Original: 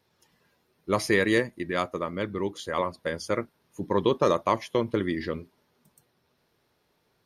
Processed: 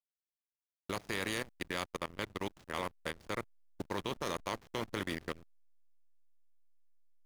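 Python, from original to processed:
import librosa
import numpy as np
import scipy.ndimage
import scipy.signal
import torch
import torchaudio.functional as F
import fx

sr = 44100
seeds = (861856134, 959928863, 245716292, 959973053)

y = fx.spec_flatten(x, sr, power=0.45)
y = fx.level_steps(y, sr, step_db=15)
y = fx.backlash(y, sr, play_db=-33.0)
y = y * 10.0 ** (-5.5 / 20.0)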